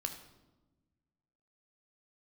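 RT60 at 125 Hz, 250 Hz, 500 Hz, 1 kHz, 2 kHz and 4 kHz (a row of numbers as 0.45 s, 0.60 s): 1.9 s, 1.8 s, 1.3 s, 1.0 s, 0.75 s, 0.75 s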